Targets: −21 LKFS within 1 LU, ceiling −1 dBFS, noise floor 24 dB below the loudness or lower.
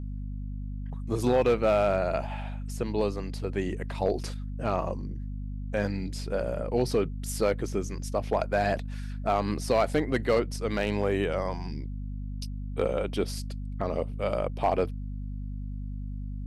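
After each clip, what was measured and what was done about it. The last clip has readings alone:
share of clipped samples 0.3%; peaks flattened at −16.0 dBFS; mains hum 50 Hz; hum harmonics up to 250 Hz; level of the hum −32 dBFS; integrated loudness −30.0 LKFS; sample peak −16.0 dBFS; target loudness −21.0 LKFS
→ clipped peaks rebuilt −16 dBFS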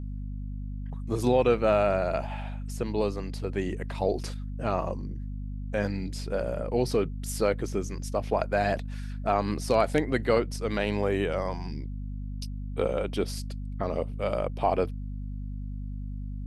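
share of clipped samples 0.0%; mains hum 50 Hz; hum harmonics up to 250 Hz; level of the hum −32 dBFS
→ mains-hum notches 50/100/150/200/250 Hz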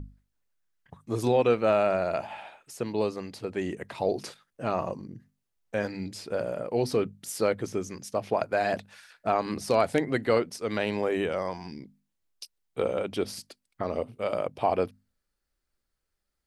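mains hum none found; integrated loudness −29.0 LKFS; sample peak −9.5 dBFS; target loudness −21.0 LKFS
→ level +8 dB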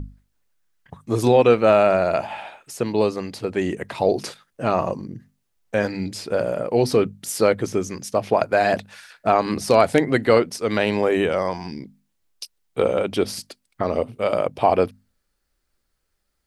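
integrated loudness −21.0 LKFS; sample peak −1.5 dBFS; background noise floor −73 dBFS

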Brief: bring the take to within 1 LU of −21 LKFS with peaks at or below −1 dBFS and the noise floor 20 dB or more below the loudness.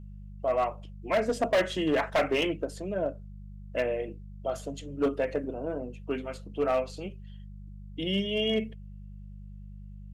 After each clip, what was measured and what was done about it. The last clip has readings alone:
share of clipped samples 1.1%; peaks flattened at −20.0 dBFS; mains hum 50 Hz; hum harmonics up to 200 Hz; level of the hum −42 dBFS; integrated loudness −30.5 LKFS; sample peak −20.0 dBFS; target loudness −21.0 LKFS
→ clipped peaks rebuilt −20 dBFS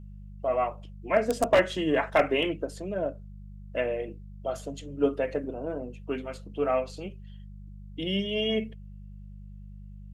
share of clipped samples 0.0%; mains hum 50 Hz; hum harmonics up to 200 Hz; level of the hum −41 dBFS
→ hum removal 50 Hz, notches 4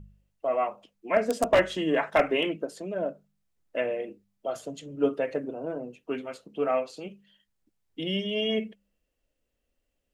mains hum none found; integrated loudness −29.0 LKFS; sample peak −11.0 dBFS; target loudness −21.0 LKFS
→ level +8 dB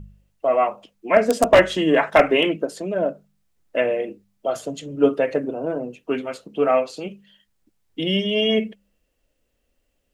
integrated loudness −21.0 LKFS; sample peak −3.0 dBFS; background noise floor −71 dBFS

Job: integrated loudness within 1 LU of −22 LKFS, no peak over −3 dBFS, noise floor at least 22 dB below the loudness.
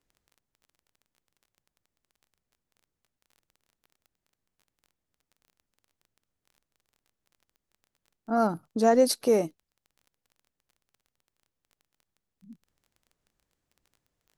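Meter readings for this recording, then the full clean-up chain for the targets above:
crackle rate 20 per second; integrated loudness −25.0 LKFS; sample peak −10.0 dBFS; target loudness −22.0 LKFS
→ click removal
level +3 dB

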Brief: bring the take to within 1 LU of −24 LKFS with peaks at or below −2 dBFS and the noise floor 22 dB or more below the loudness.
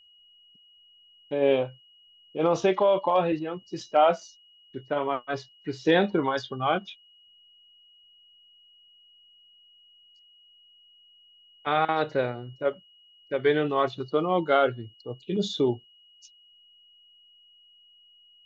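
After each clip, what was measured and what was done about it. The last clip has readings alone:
interfering tone 2,900 Hz; level of the tone −55 dBFS; integrated loudness −26.5 LKFS; sample peak −9.5 dBFS; target loudness −24.0 LKFS
→ notch filter 2,900 Hz, Q 30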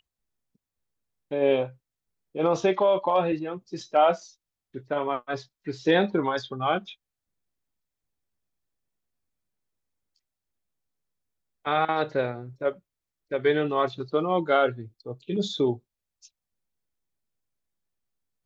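interfering tone none found; integrated loudness −26.0 LKFS; sample peak −9.5 dBFS; target loudness −24.0 LKFS
→ level +2 dB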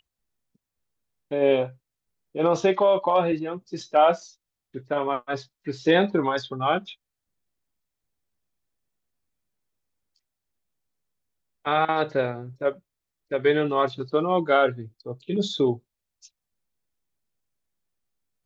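integrated loudness −24.0 LKFS; sample peak −7.5 dBFS; background noise floor −85 dBFS

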